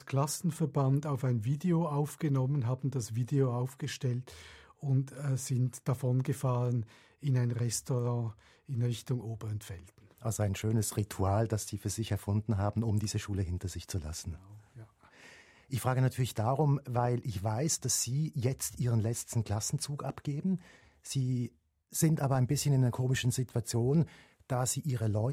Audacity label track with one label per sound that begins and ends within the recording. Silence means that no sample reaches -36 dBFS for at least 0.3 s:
4.830000	6.820000	sound
7.240000	8.290000	sound
8.700000	9.740000	sound
10.250000	14.320000	sound
15.720000	20.560000	sound
21.060000	21.470000	sound
21.950000	24.040000	sound